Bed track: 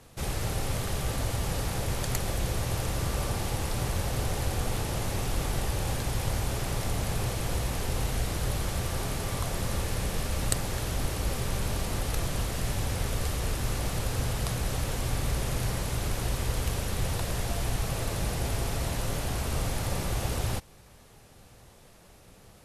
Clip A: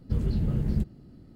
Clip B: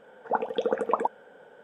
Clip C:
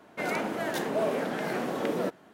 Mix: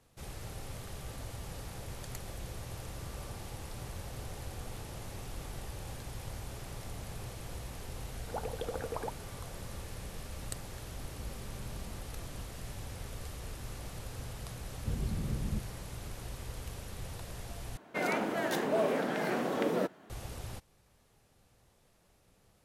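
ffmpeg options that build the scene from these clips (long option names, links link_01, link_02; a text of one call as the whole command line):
ffmpeg -i bed.wav -i cue0.wav -i cue1.wav -i cue2.wav -filter_complex "[1:a]asplit=2[link_01][link_02];[0:a]volume=-13dB[link_03];[2:a]acompressor=threshold=-25dB:ratio=6:attack=3.2:release=140:knee=1:detection=peak[link_04];[link_01]acompressor=threshold=-40dB:ratio=6:attack=3.2:release=140:knee=1:detection=peak[link_05];[link_02]aresample=32000,aresample=44100[link_06];[link_03]asplit=2[link_07][link_08];[link_07]atrim=end=17.774[link_09];[3:a]atrim=end=2.33,asetpts=PTS-STARTPTS,volume=-1.5dB[link_10];[link_08]atrim=start=20.096[link_11];[link_04]atrim=end=1.63,asetpts=PTS-STARTPTS,volume=-8dB,afade=type=in:duration=0.004:curve=hsin,afade=type=out:start_time=1.626:duration=0.004:curve=hsin,adelay=8030[link_12];[link_05]atrim=end=1.35,asetpts=PTS-STARTPTS,volume=-7dB,afade=type=in:duration=0.004:curve=hsin,afade=type=out:start_time=1.346:duration=0.004:curve=hsin,adelay=11100[link_13];[link_06]atrim=end=1.35,asetpts=PTS-STARTPTS,volume=-9dB,afade=type=in:duration=0.004:curve=hsin,afade=type=out:start_time=1.346:duration=0.004:curve=hsin,adelay=650916S[link_14];[link_09][link_10]acrossfade=duration=0.004:curve1=hsin:curve2=hsin[link_15];[link_15][link_11]acrossfade=duration=0.004:curve1=hsin:curve2=hsin[link_16];[link_16][link_12][link_13][link_14]amix=inputs=4:normalize=0" out.wav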